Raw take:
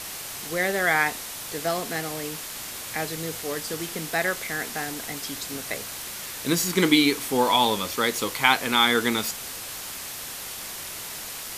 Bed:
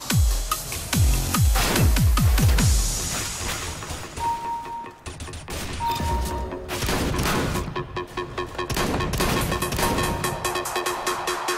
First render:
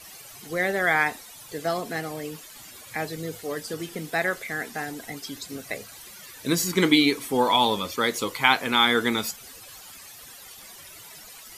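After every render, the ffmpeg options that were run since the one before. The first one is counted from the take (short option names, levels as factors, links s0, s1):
-af "afftdn=nr=14:nf=-36"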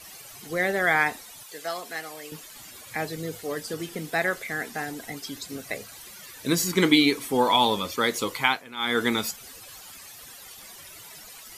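-filter_complex "[0:a]asettb=1/sr,asplit=3[s0][s1][s2];[s0]atrim=end=1.434[s3];[s1]atrim=start=1.43:end=2.32,asetpts=PTS-STARTPTS,afade=t=in:d=0.004:c=qsin,afade=t=out:st=0.886:d=0.004:c=qsin,highpass=f=1100:p=1[s4];[s2]atrim=start=2.316[s5];[s3][s4]acrossfade=d=0.004:c1=hsin:c2=qsin[s6];[s6][s5]acrossfade=d=0.004:c1=qsin:c2=hsin,asplit=3[s7][s8][s9];[s7]atrim=end=8.64,asetpts=PTS-STARTPTS,afade=t=out:st=8.38:d=0.26:silence=0.141254[s10];[s8]atrim=start=8.64:end=8.76,asetpts=PTS-STARTPTS,volume=0.141[s11];[s9]atrim=start=8.76,asetpts=PTS-STARTPTS,afade=t=in:d=0.26:silence=0.141254[s12];[s10][s11][s12]concat=n=3:v=0:a=1"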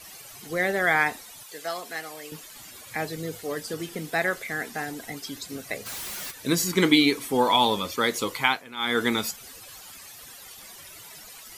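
-filter_complex "[0:a]asplit=3[s0][s1][s2];[s0]afade=t=out:st=5.85:d=0.02[s3];[s1]aeval=exprs='0.0251*sin(PI/2*3.55*val(0)/0.0251)':c=same,afade=t=in:st=5.85:d=0.02,afade=t=out:st=6.3:d=0.02[s4];[s2]afade=t=in:st=6.3:d=0.02[s5];[s3][s4][s5]amix=inputs=3:normalize=0"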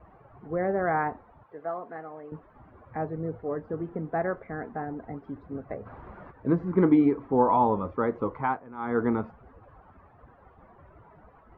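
-af "lowpass=f=1200:w=0.5412,lowpass=f=1200:w=1.3066,equalizer=f=63:w=0.99:g=10"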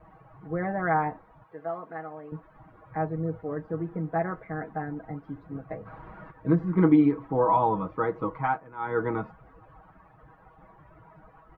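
-af "equalizer=f=410:w=1:g=-4.5,aecho=1:1:6.3:0.79"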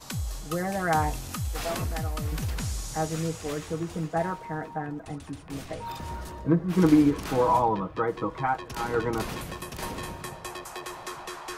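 -filter_complex "[1:a]volume=0.237[s0];[0:a][s0]amix=inputs=2:normalize=0"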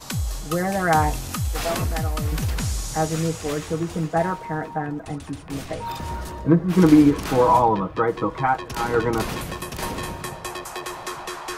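-af "volume=2,alimiter=limit=0.708:level=0:latency=1"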